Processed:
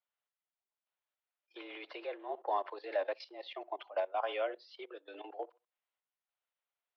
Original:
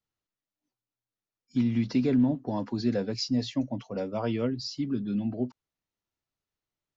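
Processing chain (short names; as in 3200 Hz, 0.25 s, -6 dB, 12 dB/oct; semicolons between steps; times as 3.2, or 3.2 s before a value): tape echo 65 ms, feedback 21%, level -18 dB, low-pass 1500 Hz; level quantiser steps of 16 dB; random-step tremolo; mistuned SSB +91 Hz 480–3500 Hz; gain +6.5 dB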